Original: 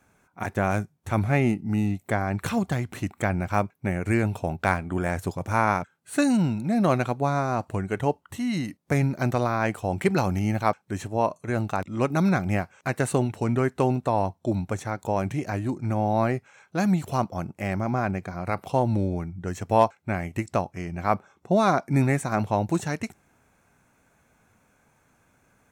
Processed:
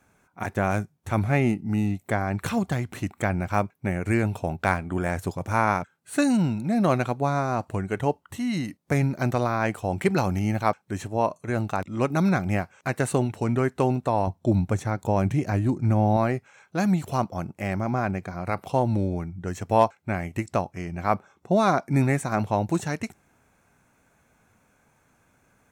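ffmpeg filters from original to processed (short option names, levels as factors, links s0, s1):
-filter_complex "[0:a]asettb=1/sr,asplit=3[s0][s1][s2];[s0]atrim=end=14.274[s3];[s1]atrim=start=14.27:end=16.17,asetpts=PTS-STARTPTS,afade=t=in:d=0.004:c=qsin,afade=t=out:st=1.896:d=0.004:c=qsin,lowshelf=f=280:g=7[s4];[s2]atrim=start=16.166[s5];[s3][s4]acrossfade=d=0.004:c1=hsin:c2=qsin[s6];[s6][s5]acrossfade=d=0.004:c1=qsin:c2=hsin"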